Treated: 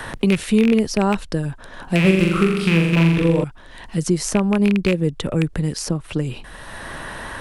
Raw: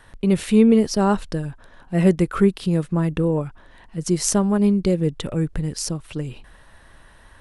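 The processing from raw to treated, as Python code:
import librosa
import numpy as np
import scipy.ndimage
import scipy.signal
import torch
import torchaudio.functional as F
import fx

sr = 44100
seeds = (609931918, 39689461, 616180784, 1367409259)

y = fx.rattle_buzz(x, sr, strikes_db=-19.0, level_db=-12.0)
y = fx.room_flutter(y, sr, wall_m=7.2, rt60_s=0.94, at=(2.0, 3.44))
y = fx.band_squash(y, sr, depth_pct=70)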